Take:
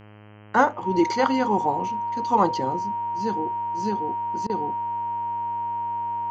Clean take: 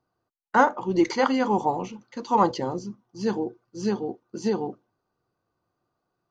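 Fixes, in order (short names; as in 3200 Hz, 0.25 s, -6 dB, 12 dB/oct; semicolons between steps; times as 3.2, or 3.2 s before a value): de-hum 105.1 Hz, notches 30; notch 940 Hz, Q 30; interpolate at 4.47, 25 ms; gain correction +3 dB, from 2.76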